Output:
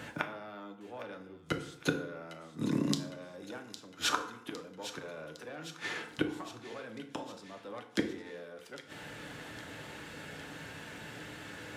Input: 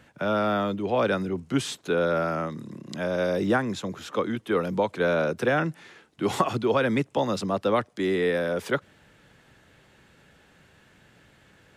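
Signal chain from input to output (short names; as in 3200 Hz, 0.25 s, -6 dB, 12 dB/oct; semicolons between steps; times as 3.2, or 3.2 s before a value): one diode to ground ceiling -19 dBFS; flipped gate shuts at -26 dBFS, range -31 dB; HPF 150 Hz 6 dB/oct; on a send: thin delay 0.808 s, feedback 62%, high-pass 2200 Hz, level -11 dB; on the sum: FDN reverb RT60 0.72 s, low-frequency decay 1.1×, high-frequency decay 0.65×, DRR 4.5 dB; gain +10.5 dB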